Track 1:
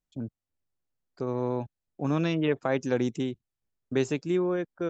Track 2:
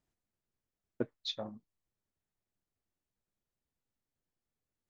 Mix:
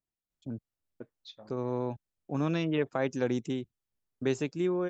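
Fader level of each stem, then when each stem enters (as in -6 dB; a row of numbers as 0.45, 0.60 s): -3.0, -11.0 dB; 0.30, 0.00 s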